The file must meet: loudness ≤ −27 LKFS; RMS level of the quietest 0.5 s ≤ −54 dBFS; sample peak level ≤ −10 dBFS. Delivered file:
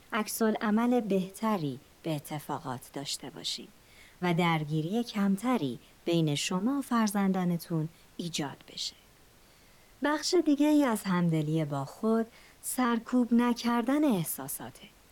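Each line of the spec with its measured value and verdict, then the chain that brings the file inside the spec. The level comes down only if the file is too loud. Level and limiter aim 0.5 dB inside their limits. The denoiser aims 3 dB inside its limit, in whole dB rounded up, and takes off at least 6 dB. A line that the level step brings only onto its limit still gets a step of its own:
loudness −30.0 LKFS: in spec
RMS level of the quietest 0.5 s −59 dBFS: in spec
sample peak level −17.0 dBFS: in spec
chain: no processing needed

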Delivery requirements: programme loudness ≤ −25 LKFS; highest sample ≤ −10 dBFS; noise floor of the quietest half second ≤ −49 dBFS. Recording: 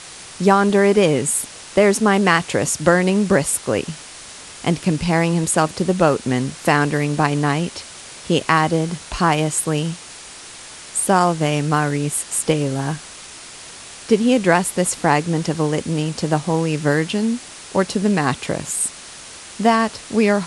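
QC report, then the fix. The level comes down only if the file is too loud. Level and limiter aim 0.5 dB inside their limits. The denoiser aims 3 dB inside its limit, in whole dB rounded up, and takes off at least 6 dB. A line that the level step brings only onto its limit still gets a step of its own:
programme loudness −18.5 LKFS: out of spec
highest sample −2.0 dBFS: out of spec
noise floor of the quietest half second −38 dBFS: out of spec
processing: broadband denoise 7 dB, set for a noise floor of −38 dBFS
level −7 dB
brickwall limiter −10.5 dBFS

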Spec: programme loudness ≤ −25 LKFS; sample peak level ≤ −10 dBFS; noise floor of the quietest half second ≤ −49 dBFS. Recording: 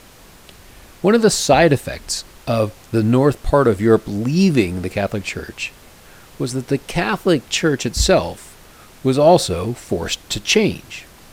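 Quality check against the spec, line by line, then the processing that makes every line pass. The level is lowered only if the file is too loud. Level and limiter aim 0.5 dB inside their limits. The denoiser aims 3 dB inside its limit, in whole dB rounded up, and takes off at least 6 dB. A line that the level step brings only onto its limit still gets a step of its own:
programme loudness −17.5 LKFS: out of spec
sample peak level −1.5 dBFS: out of spec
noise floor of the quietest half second −44 dBFS: out of spec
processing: level −8 dB
brickwall limiter −10.5 dBFS

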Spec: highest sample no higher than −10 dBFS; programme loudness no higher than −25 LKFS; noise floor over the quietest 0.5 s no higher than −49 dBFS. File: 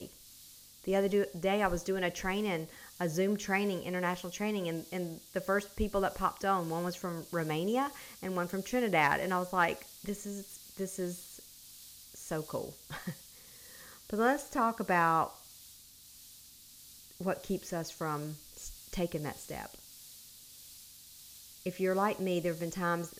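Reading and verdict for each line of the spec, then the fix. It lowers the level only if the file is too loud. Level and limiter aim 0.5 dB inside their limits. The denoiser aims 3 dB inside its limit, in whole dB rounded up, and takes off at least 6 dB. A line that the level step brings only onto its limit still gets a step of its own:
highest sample −15.5 dBFS: in spec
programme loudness −34.0 LKFS: in spec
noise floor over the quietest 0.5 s −55 dBFS: in spec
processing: no processing needed

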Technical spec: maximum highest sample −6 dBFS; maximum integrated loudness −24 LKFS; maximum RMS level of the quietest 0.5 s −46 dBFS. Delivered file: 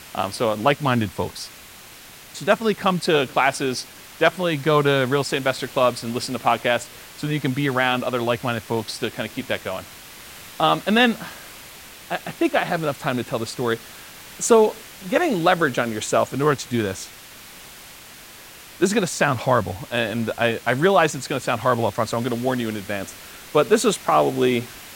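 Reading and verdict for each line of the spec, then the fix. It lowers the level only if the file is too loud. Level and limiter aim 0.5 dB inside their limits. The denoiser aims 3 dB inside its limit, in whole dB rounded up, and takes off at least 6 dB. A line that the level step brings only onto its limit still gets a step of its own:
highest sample −4.0 dBFS: out of spec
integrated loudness −21.5 LKFS: out of spec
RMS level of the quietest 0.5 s −43 dBFS: out of spec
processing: broadband denoise 6 dB, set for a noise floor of −43 dBFS
level −3 dB

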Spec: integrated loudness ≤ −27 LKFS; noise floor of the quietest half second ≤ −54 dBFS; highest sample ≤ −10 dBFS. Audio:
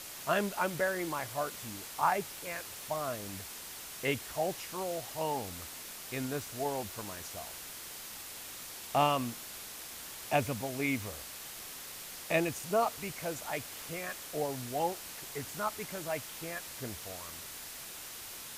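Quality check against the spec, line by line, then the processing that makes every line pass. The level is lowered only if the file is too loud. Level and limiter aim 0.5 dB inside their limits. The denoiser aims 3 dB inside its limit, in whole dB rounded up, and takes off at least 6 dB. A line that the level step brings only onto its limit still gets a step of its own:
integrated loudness −36.0 LKFS: in spec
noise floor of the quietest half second −45 dBFS: out of spec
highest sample −15.0 dBFS: in spec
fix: broadband denoise 12 dB, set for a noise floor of −45 dBFS

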